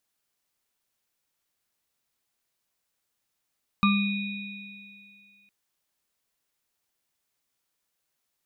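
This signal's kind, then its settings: sine partials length 1.66 s, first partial 201 Hz, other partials 1190/2470/3800 Hz, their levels -1/-7/-12 dB, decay 1.92 s, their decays 0.36/2.94/2.41 s, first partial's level -18.5 dB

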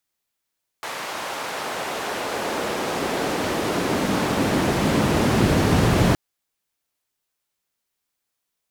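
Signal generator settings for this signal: swept filtered noise white, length 5.32 s bandpass, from 920 Hz, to 110 Hz, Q 0.85, exponential, gain ramp +23.5 dB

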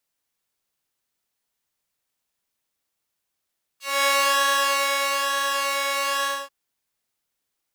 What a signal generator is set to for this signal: synth patch with pulse-width modulation C#5, oscillator 2 square, interval 0 st, detune 29 cents, oscillator 2 level -9 dB, sub -6 dB, filter highpass, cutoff 760 Hz, Q 0.97, filter envelope 2.5 oct, filter decay 0.08 s, filter sustain 25%, attack 0.232 s, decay 1.23 s, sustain -5 dB, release 0.25 s, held 2.44 s, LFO 1.1 Hz, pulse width 30%, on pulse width 7%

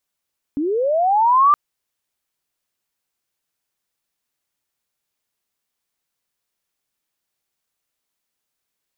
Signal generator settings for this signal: chirp linear 270 Hz -> 1200 Hz -18.5 dBFS -> -9 dBFS 0.97 s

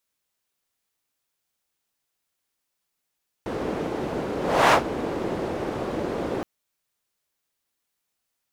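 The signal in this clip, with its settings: whoosh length 2.97 s, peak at 1.26, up 0.35 s, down 0.12 s, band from 400 Hz, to 1000 Hz, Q 1.3, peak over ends 13 dB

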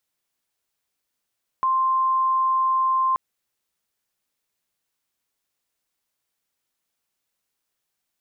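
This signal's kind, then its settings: tone sine 1050 Hz -17.5 dBFS 1.53 s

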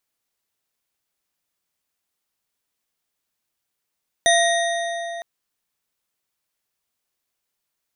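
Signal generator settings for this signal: metal hit bar, length 0.96 s, lowest mode 681 Hz, modes 5, decay 4.00 s, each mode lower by 2 dB, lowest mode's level -15.5 dB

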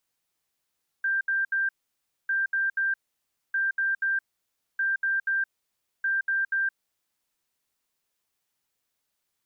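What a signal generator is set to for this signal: beep pattern sine 1580 Hz, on 0.17 s, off 0.07 s, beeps 3, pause 0.60 s, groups 5, -22.5 dBFS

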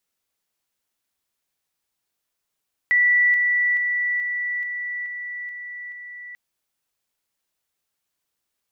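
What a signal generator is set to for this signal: level ladder 1960 Hz -14 dBFS, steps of -3 dB, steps 8, 0.43 s 0.00 s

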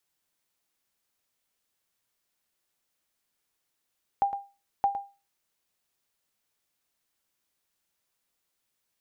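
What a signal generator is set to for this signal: sonar ping 799 Hz, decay 0.30 s, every 0.62 s, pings 2, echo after 0.11 s, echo -11 dB -16.5 dBFS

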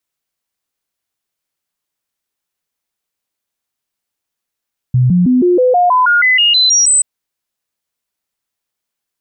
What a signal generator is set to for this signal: stepped sine 126 Hz up, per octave 2, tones 13, 0.16 s, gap 0.00 s -7 dBFS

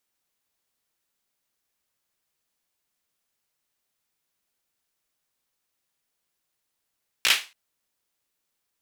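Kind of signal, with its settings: hand clap length 0.28 s, bursts 4, apart 17 ms, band 2600 Hz, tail 0.29 s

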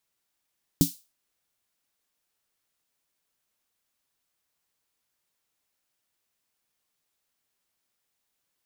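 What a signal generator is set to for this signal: snare drum length 0.31 s, tones 170 Hz, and 280 Hz, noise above 3800 Hz, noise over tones -9 dB, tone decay 0.13 s, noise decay 0.31 s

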